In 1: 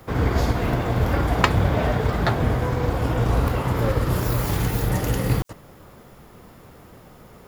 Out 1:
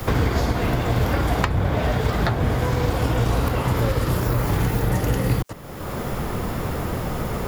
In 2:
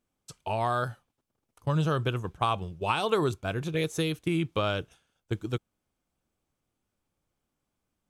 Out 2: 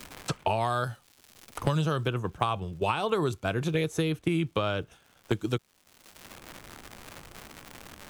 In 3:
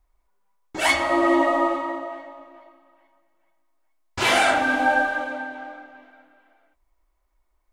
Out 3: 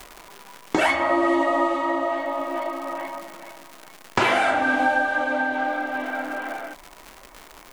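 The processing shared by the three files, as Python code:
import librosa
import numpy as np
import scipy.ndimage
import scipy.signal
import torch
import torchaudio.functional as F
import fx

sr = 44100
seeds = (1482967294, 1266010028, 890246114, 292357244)

y = fx.dmg_crackle(x, sr, seeds[0], per_s=260.0, level_db=-55.0)
y = fx.band_squash(y, sr, depth_pct=100)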